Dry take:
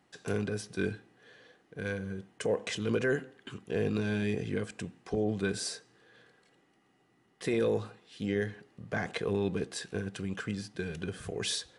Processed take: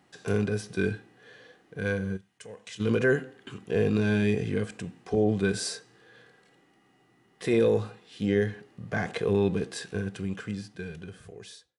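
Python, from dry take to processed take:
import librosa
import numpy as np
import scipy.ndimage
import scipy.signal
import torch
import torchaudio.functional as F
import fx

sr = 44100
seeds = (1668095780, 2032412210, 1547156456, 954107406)

y = fx.fade_out_tail(x, sr, length_s=2.04)
y = fx.hpss(y, sr, part='harmonic', gain_db=7)
y = fx.tone_stack(y, sr, knobs='5-5-5', at=(2.16, 2.79), fade=0.02)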